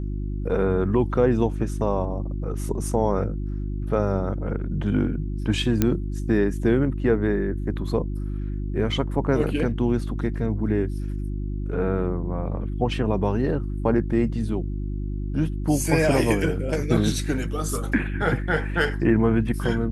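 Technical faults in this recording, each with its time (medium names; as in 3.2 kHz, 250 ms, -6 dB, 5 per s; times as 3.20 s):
hum 50 Hz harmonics 7 -28 dBFS
5.82 s: pop -6 dBFS
16.97 s: dropout 4.3 ms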